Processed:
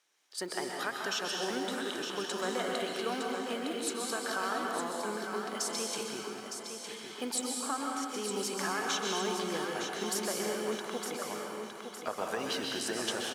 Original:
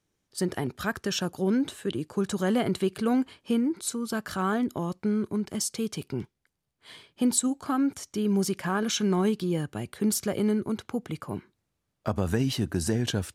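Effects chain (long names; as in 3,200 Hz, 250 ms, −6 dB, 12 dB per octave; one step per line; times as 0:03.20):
one scale factor per block 7 bits
high-pass filter 590 Hz 12 dB per octave
high-shelf EQ 8,900 Hz −9 dB
downward compressor, threshold −31 dBFS, peak gain reduction 8.5 dB
repeating echo 911 ms, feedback 38%, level −7 dB
dense smooth reverb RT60 1.7 s, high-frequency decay 0.95×, pre-delay 115 ms, DRR 0 dB
one half of a high-frequency compander encoder only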